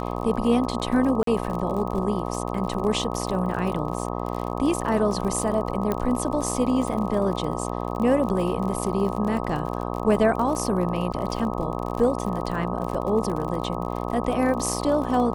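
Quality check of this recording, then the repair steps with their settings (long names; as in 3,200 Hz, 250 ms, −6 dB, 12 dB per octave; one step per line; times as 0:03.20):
mains buzz 60 Hz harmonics 21 −29 dBFS
surface crackle 46 per second −30 dBFS
0:01.23–0:01.27: drop-out 43 ms
0:05.92: click −12 dBFS
0:11.13–0:11.14: drop-out 7 ms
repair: click removal
hum removal 60 Hz, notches 21
repair the gap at 0:01.23, 43 ms
repair the gap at 0:11.13, 7 ms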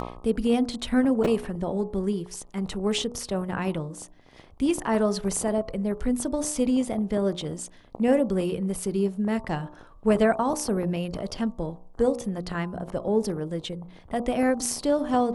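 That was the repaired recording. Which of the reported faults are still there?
none of them is left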